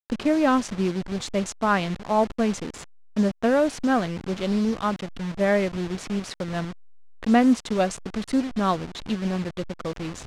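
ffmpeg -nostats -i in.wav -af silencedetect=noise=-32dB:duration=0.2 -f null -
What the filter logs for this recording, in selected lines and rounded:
silence_start: 2.84
silence_end: 3.17 | silence_duration: 0.33
silence_start: 6.71
silence_end: 7.23 | silence_duration: 0.52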